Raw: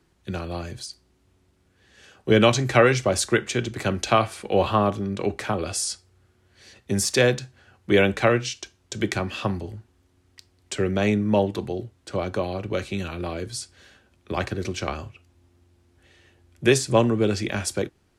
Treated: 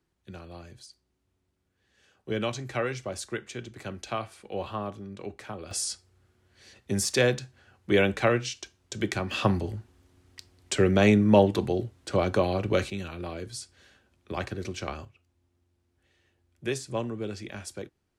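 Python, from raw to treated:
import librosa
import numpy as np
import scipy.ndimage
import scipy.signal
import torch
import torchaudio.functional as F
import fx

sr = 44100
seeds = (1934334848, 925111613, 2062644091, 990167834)

y = fx.gain(x, sr, db=fx.steps((0.0, -13.0), (5.71, -4.0), (9.31, 2.0), (12.9, -6.0), (15.05, -12.5)))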